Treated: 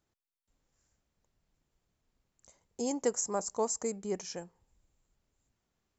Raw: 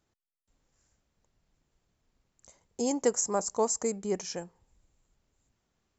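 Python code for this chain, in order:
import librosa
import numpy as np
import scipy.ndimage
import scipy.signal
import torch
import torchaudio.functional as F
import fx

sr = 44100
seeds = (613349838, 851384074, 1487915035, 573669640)

y = F.gain(torch.from_numpy(x), -4.0).numpy()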